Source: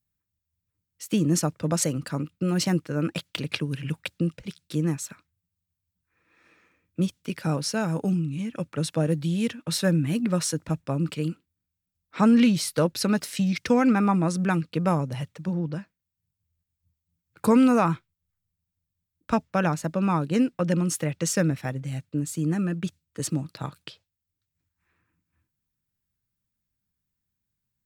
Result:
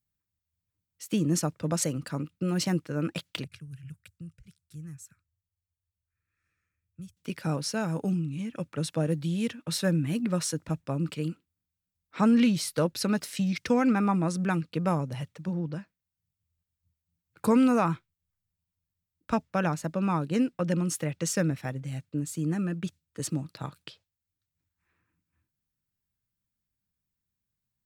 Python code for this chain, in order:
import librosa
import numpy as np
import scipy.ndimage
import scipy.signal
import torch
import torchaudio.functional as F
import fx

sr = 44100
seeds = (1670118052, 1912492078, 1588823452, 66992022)

y = fx.curve_eq(x, sr, hz=(100.0, 270.0, 520.0, 900.0, 1400.0, 3600.0, 7600.0), db=(0, -24, -26, -29, -14, -20, -9), at=(3.44, 7.17))
y = y * 10.0 ** (-3.5 / 20.0)